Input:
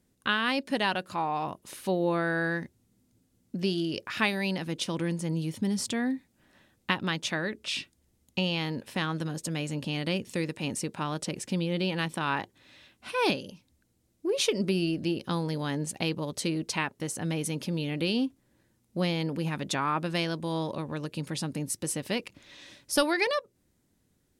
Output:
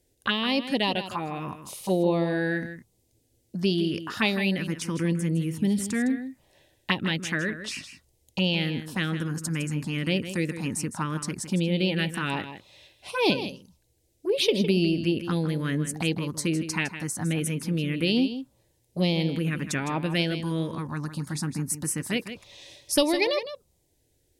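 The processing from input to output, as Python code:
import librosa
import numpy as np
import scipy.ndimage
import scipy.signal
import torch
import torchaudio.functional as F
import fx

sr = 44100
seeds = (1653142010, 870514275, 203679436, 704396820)

y = fx.env_phaser(x, sr, low_hz=200.0, high_hz=1500.0, full_db=-23.5)
y = y + 10.0 ** (-11.0 / 20.0) * np.pad(y, (int(159 * sr / 1000.0), 0))[:len(y)]
y = F.gain(torch.from_numpy(y), 5.0).numpy()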